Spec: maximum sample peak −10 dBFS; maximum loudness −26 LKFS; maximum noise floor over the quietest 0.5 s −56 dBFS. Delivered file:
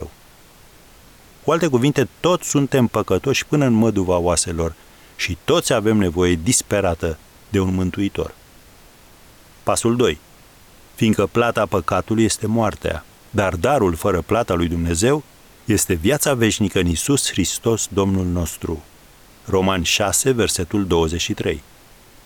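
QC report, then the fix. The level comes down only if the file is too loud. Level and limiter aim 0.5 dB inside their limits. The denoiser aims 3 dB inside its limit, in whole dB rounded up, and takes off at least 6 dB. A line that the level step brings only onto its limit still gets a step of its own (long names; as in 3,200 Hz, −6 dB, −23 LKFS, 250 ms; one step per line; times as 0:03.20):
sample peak −5.5 dBFS: out of spec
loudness −19.0 LKFS: out of spec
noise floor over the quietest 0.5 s −47 dBFS: out of spec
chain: broadband denoise 6 dB, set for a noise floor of −47 dBFS
level −7.5 dB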